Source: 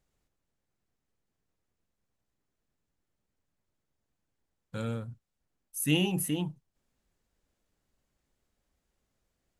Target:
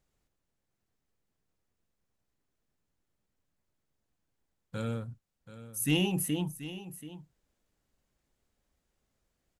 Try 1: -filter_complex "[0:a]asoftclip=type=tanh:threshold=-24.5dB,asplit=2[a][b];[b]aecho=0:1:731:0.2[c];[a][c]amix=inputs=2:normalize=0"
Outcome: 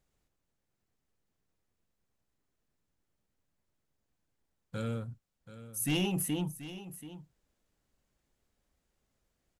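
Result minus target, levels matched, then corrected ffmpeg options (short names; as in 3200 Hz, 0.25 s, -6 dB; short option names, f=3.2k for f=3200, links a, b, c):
soft clip: distortion +11 dB
-filter_complex "[0:a]asoftclip=type=tanh:threshold=-15.5dB,asplit=2[a][b];[b]aecho=0:1:731:0.2[c];[a][c]amix=inputs=2:normalize=0"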